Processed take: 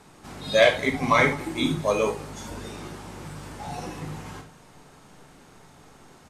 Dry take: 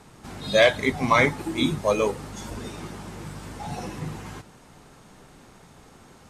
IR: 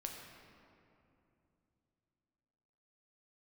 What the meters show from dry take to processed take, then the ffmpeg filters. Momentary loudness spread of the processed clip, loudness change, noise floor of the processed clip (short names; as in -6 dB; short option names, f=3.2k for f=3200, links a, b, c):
20 LU, 0.0 dB, -52 dBFS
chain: -filter_complex "[0:a]lowshelf=f=190:g=-3.5,aecho=1:1:200:0.0668[a];[1:a]atrim=start_sample=2205,atrim=end_sample=3969[b];[a][b]afir=irnorm=-1:irlink=0,volume=3dB"